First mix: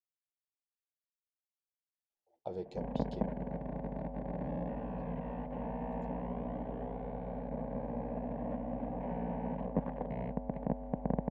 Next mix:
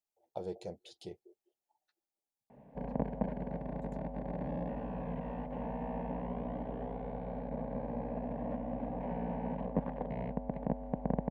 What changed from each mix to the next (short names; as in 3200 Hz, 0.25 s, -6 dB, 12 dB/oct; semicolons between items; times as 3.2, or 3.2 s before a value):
speech: entry -2.10 s; master: remove air absorption 110 m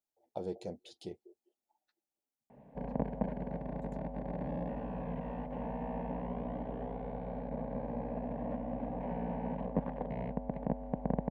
speech: add bell 250 Hz +9.5 dB 0.56 oct